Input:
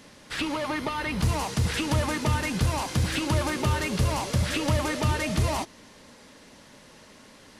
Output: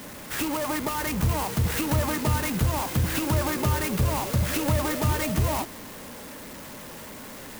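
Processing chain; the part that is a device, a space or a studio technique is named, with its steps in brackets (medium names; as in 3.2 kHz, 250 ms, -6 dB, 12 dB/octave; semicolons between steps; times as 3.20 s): early CD player with a faulty converter (jump at every zero crossing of -37 dBFS; sampling jitter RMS 0.066 ms)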